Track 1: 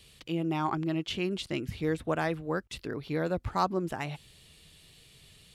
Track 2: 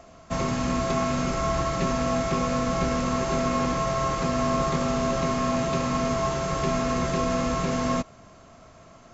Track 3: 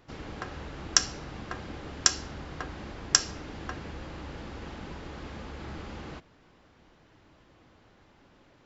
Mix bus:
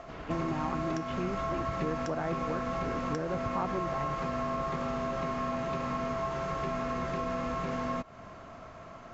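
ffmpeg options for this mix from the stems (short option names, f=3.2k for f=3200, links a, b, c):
-filter_complex "[0:a]volume=1dB[a];[1:a]volume=0.5dB[b];[2:a]volume=-4.5dB[c];[b][c]amix=inputs=2:normalize=0,crystalizer=i=10:c=0,acompressor=threshold=-27dB:ratio=2,volume=0dB[d];[a][d]amix=inputs=2:normalize=0,lowpass=1.4k,acompressor=threshold=-33dB:ratio=2"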